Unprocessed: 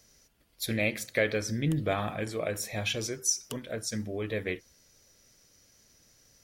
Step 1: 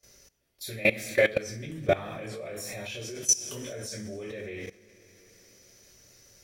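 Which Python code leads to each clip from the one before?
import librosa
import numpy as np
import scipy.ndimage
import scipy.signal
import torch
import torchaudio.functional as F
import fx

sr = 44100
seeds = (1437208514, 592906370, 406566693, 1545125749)

y = fx.rev_double_slope(x, sr, seeds[0], early_s=0.4, late_s=2.6, knee_db=-19, drr_db=-7.0)
y = fx.level_steps(y, sr, step_db=19)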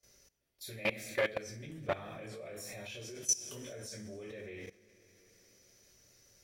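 y = fx.transformer_sat(x, sr, knee_hz=1100.0)
y = y * 10.0 ** (-7.5 / 20.0)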